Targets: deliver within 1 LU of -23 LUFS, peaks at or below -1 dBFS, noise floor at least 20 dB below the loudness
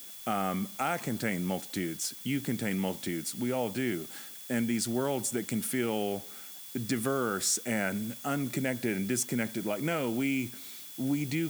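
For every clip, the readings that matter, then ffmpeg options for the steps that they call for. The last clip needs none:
steady tone 3400 Hz; tone level -55 dBFS; noise floor -46 dBFS; noise floor target -52 dBFS; loudness -32.0 LUFS; peak -14.5 dBFS; loudness target -23.0 LUFS
-> -af "bandreject=f=3.4k:w=30"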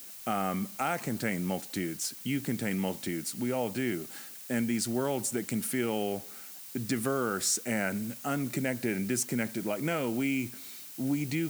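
steady tone none; noise floor -46 dBFS; noise floor target -52 dBFS
-> -af "afftdn=nr=6:nf=-46"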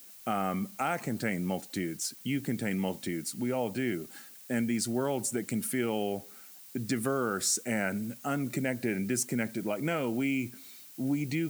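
noise floor -51 dBFS; noise floor target -52 dBFS
-> -af "afftdn=nr=6:nf=-51"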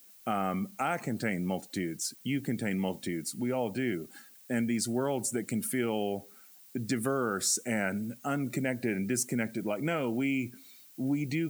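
noise floor -56 dBFS; loudness -32.0 LUFS; peak -16.5 dBFS; loudness target -23.0 LUFS
-> -af "volume=9dB"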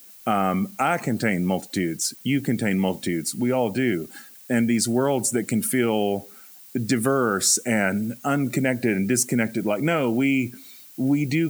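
loudness -23.0 LUFS; peak -7.5 dBFS; noise floor -47 dBFS

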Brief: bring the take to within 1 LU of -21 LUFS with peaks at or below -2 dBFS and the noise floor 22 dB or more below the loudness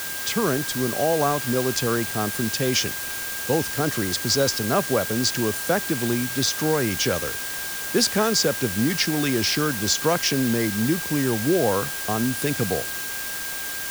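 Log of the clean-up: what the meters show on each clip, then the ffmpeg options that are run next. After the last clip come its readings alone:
steady tone 1600 Hz; tone level -34 dBFS; noise floor -30 dBFS; noise floor target -45 dBFS; loudness -22.5 LUFS; peak -7.0 dBFS; loudness target -21.0 LUFS
-> -af "bandreject=f=1.6k:w=30"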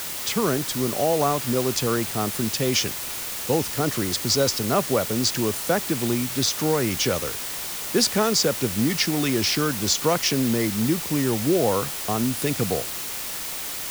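steady tone none; noise floor -31 dBFS; noise floor target -45 dBFS
-> -af "afftdn=nr=14:nf=-31"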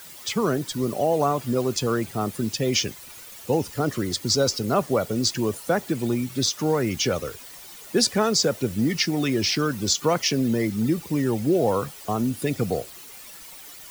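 noise floor -43 dBFS; noise floor target -46 dBFS
-> -af "afftdn=nr=6:nf=-43"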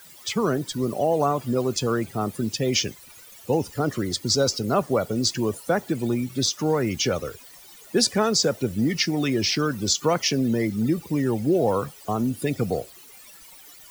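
noise floor -47 dBFS; loudness -24.0 LUFS; peak -7.5 dBFS; loudness target -21.0 LUFS
-> -af "volume=3dB"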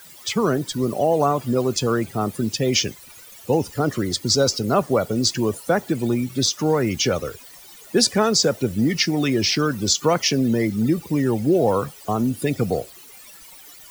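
loudness -21.0 LUFS; peak -4.5 dBFS; noise floor -44 dBFS

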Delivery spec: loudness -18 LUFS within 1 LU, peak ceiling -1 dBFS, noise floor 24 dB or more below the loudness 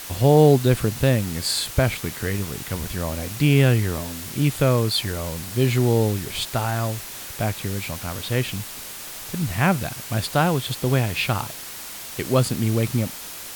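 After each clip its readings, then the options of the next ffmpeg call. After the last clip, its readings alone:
noise floor -36 dBFS; noise floor target -47 dBFS; loudness -22.5 LUFS; peak -3.5 dBFS; loudness target -18.0 LUFS
-> -af "afftdn=nr=11:nf=-36"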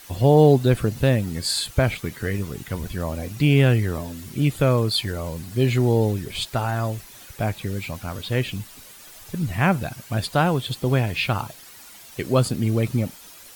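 noise floor -45 dBFS; noise floor target -47 dBFS
-> -af "afftdn=nr=6:nf=-45"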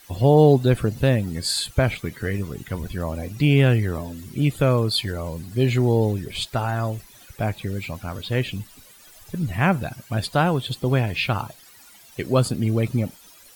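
noise floor -49 dBFS; loudness -22.5 LUFS; peak -4.0 dBFS; loudness target -18.0 LUFS
-> -af "volume=4.5dB,alimiter=limit=-1dB:level=0:latency=1"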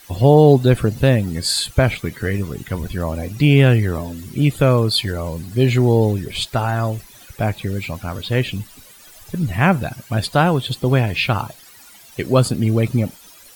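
loudness -18.0 LUFS; peak -1.0 dBFS; noise floor -45 dBFS

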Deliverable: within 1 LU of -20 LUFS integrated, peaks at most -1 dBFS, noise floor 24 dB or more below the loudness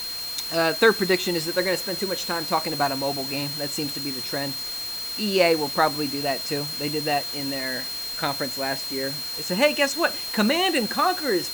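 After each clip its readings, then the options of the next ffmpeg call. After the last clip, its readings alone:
steady tone 4200 Hz; tone level -30 dBFS; noise floor -32 dBFS; noise floor target -48 dBFS; loudness -24.0 LUFS; peak -5.0 dBFS; loudness target -20.0 LUFS
-> -af "bandreject=f=4.2k:w=30"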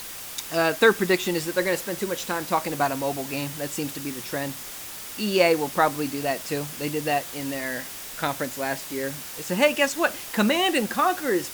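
steady tone none; noise floor -38 dBFS; noise floor target -49 dBFS
-> -af "afftdn=nr=11:nf=-38"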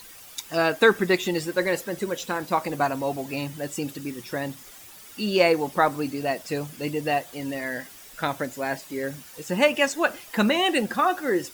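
noise floor -46 dBFS; noise floor target -50 dBFS
-> -af "afftdn=nr=6:nf=-46"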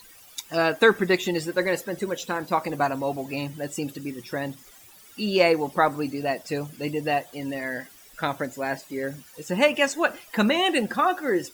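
noise floor -50 dBFS; loudness -25.5 LUFS; peak -5.5 dBFS; loudness target -20.0 LUFS
-> -af "volume=5.5dB,alimiter=limit=-1dB:level=0:latency=1"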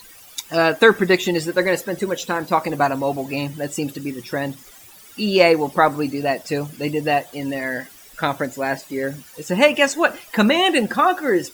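loudness -20.0 LUFS; peak -1.0 dBFS; noise floor -45 dBFS

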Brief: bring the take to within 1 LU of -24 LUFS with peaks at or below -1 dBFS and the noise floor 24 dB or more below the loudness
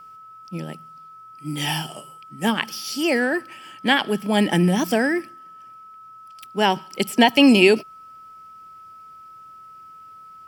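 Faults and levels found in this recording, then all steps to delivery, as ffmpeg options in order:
steady tone 1300 Hz; tone level -41 dBFS; loudness -20.0 LUFS; peak -1.5 dBFS; loudness target -24.0 LUFS
-> -af "bandreject=f=1.3k:w=30"
-af "volume=-4dB"

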